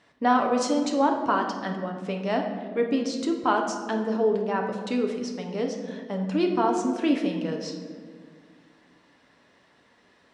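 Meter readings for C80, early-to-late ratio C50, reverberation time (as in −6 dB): 7.5 dB, 6.0 dB, 1.8 s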